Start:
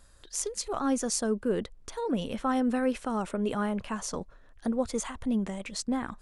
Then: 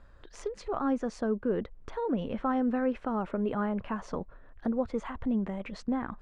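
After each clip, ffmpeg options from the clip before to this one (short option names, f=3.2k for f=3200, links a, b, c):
-filter_complex "[0:a]lowpass=1.9k,asplit=2[a][b];[b]acompressor=threshold=-37dB:ratio=6,volume=2dB[c];[a][c]amix=inputs=2:normalize=0,volume=-3.5dB"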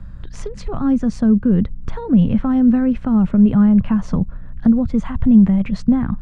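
-filter_complex "[0:a]aeval=exprs='val(0)+0.000891*(sin(2*PI*60*n/s)+sin(2*PI*2*60*n/s)/2+sin(2*PI*3*60*n/s)/3+sin(2*PI*4*60*n/s)/4+sin(2*PI*5*60*n/s)/5)':c=same,acrossover=split=400|3000[a][b][c];[b]acompressor=threshold=-39dB:ratio=2.5[d];[a][d][c]amix=inputs=3:normalize=0,lowshelf=f=260:t=q:w=1.5:g=13,volume=8.5dB"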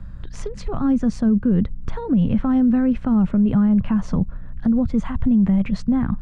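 -af "alimiter=limit=-10dB:level=0:latency=1:release=49,volume=-1dB"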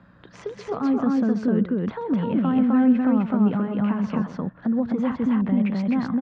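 -filter_complex "[0:a]highpass=280,lowpass=3.5k,asplit=2[a][b];[b]aecho=0:1:131.2|256.6:0.251|0.891[c];[a][c]amix=inputs=2:normalize=0"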